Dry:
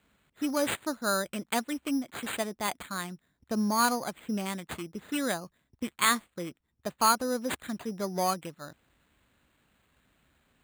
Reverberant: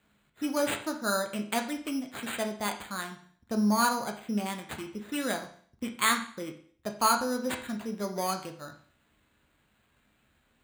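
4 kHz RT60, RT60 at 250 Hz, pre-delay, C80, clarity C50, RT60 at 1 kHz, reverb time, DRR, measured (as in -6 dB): 0.50 s, 0.50 s, 9 ms, 13.5 dB, 10.0 dB, 0.50 s, 0.50 s, 4.0 dB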